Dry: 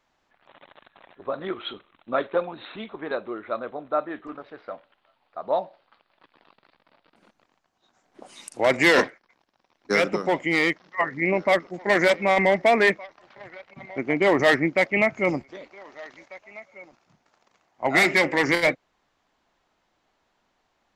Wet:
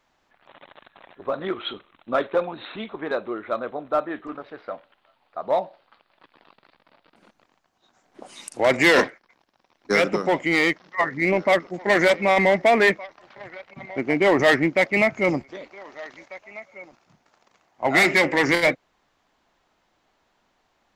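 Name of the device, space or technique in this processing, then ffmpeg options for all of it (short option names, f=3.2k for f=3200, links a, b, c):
parallel distortion: -filter_complex "[0:a]asplit=2[a][b];[b]asoftclip=type=hard:threshold=-22.5dB,volume=-7.5dB[c];[a][c]amix=inputs=2:normalize=0"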